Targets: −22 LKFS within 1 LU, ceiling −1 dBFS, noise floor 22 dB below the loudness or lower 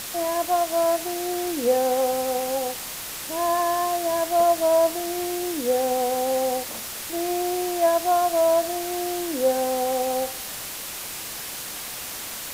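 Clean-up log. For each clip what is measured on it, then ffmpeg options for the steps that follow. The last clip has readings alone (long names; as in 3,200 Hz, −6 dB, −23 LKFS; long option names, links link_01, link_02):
background noise floor −34 dBFS; target noise floor −46 dBFS; integrated loudness −24.0 LKFS; sample peak −9.5 dBFS; target loudness −22.0 LKFS
→ -af "afftdn=noise_reduction=12:noise_floor=-34"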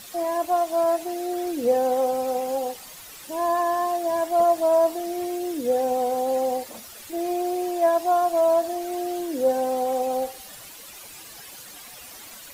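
background noise floor −43 dBFS; target noise floor −46 dBFS
→ -af "afftdn=noise_reduction=6:noise_floor=-43"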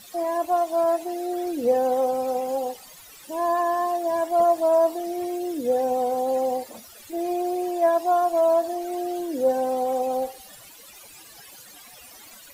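background noise floor −47 dBFS; integrated loudness −24.0 LKFS; sample peak −10.5 dBFS; target loudness −22.0 LKFS
→ -af "volume=2dB"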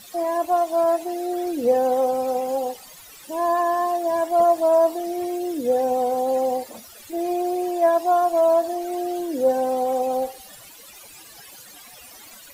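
integrated loudness −22.0 LKFS; sample peak −8.5 dBFS; background noise floor −45 dBFS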